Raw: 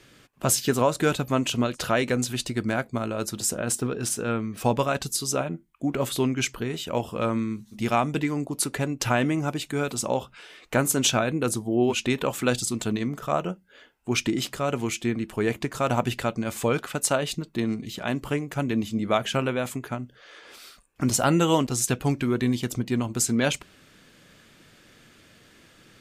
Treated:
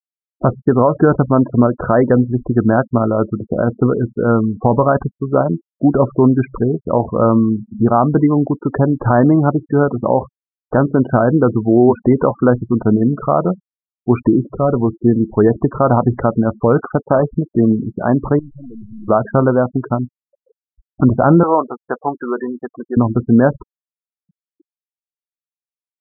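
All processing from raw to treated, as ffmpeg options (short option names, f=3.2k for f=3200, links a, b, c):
-filter_complex "[0:a]asettb=1/sr,asplit=3[a][b][c];[a]atrim=end=14.444[d];[b]atrim=start=14.44:end=14.93,asetpts=PTS-STARTPTS,afade=t=in:d=0.004:c=qsin,afade=t=out:st=0.486:d=0.004:c=qsin,lowpass=f=1.3k:p=1,asoftclip=type=hard:threshold=-22dB[e];[c]atrim=start=14.926[f];[d][e]acrossfade=d=0.004:c1=hsin:c2=qsin[g];[g][f]acrossfade=d=0.004:c1=qsin:c2=hsin,asettb=1/sr,asplit=3[h][i][j];[h]atrim=end=16.944[k];[i]atrim=start=16.94:end=17.35,asetpts=PTS-STARTPTS,afade=t=in:d=0.004:c=qsin,afade=t=out:st=0.406:d=0.004:c=qsin,lowpass=f=2.4k:p=1,bandreject=f=1.4k:w=21,acrusher=bits=2:mode=log:mix=0:aa=0.000001[l];[j]atrim=start=17.346[m];[k][l]acrossfade=d=0.004:c1=hsin:c2=qsin[n];[n][m]acrossfade=d=0.004:c1=qsin:c2=hsin,asettb=1/sr,asplit=3[o][p][q];[o]atrim=end=18.394[r];[p]atrim=start=18.39:end=19.08,asetpts=PTS-STARTPTS,afade=t=in:d=0.004:c=qsin,afade=t=out:st=0.686:d=0.004:c=qsin,acompressor=threshold=-28dB:ratio=20:attack=3.2:release=140:knee=1:detection=peak,aeval=exprs='(tanh(178*val(0)+0.6)-tanh(0.6))/178':c=same[s];[q]atrim=start=19.076[t];[r][s]acrossfade=d=0.004:c1=hsin:c2=qsin[u];[u][t]acrossfade=d=0.004:c1=qsin:c2=hsin,asettb=1/sr,asplit=3[v][w][x];[v]atrim=end=21.434[y];[w]atrim=start=21.43:end=22.97,asetpts=PTS-STARTPTS,afade=t=in:d=0.004:c=qsin,afade=t=out:st=1.536:d=0.004:c=qsin,highpass=590,asplit=2[z][aa];[aa]adelay=13,volume=-11dB[ab];[z][ab]amix=inputs=2:normalize=0,atrim=end_sample=67914[ac];[x]atrim=start=22.966[ad];[y][ac]acrossfade=d=0.004:c1=hsin:c2=qsin[ae];[ae][ad]acrossfade=d=0.004:c1=qsin:c2=hsin,lowpass=f=1.3k:w=0.5412,lowpass=f=1.3k:w=1.3066,afftfilt=real='re*gte(hypot(re,im),0.02)':imag='im*gte(hypot(re,im),0.02)':win_size=1024:overlap=0.75,alimiter=level_in=15dB:limit=-1dB:release=50:level=0:latency=1,volume=-1dB"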